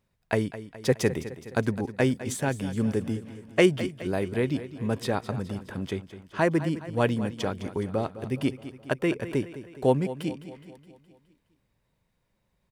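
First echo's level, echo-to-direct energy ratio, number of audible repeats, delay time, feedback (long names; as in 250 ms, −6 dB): −14.0 dB, −12.5 dB, 5, 209 ms, 55%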